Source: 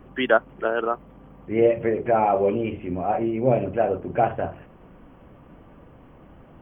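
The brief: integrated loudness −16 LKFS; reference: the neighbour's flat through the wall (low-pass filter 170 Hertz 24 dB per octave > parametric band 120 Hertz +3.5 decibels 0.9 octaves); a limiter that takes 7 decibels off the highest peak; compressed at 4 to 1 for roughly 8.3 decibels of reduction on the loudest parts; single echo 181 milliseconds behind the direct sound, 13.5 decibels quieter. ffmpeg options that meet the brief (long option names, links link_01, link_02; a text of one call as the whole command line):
ffmpeg -i in.wav -af "acompressor=threshold=-23dB:ratio=4,alimiter=limit=-19dB:level=0:latency=1,lowpass=frequency=170:width=0.5412,lowpass=frequency=170:width=1.3066,equalizer=frequency=120:width_type=o:width=0.9:gain=3.5,aecho=1:1:181:0.211,volume=24.5dB" out.wav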